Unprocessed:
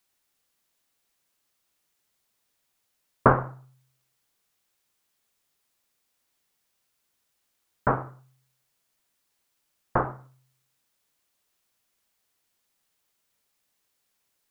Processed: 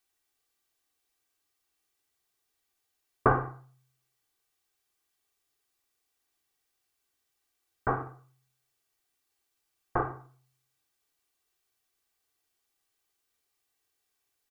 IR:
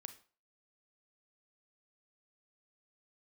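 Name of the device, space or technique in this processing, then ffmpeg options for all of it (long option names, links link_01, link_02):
microphone above a desk: -filter_complex "[0:a]aecho=1:1:2.6:0.58[link_01];[1:a]atrim=start_sample=2205[link_02];[link_01][link_02]afir=irnorm=-1:irlink=0"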